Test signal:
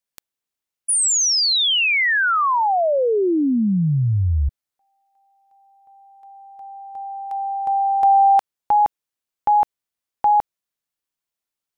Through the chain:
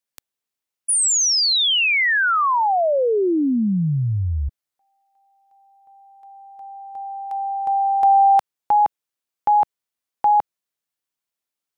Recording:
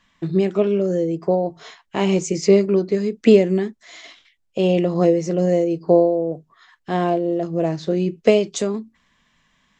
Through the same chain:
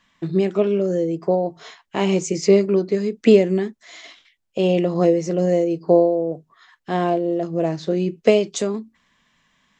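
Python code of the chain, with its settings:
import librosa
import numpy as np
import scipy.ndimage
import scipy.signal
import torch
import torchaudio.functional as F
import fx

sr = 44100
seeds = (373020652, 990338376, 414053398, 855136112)

y = fx.low_shelf(x, sr, hz=86.0, db=-7.0)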